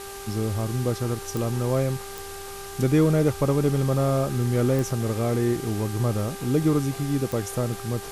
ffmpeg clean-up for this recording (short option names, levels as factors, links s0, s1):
-af "adeclick=t=4,bandreject=f=395.5:t=h:w=4,bandreject=f=791:t=h:w=4,bandreject=f=1186.5:t=h:w=4,bandreject=f=1582:t=h:w=4,afwtdn=0.01"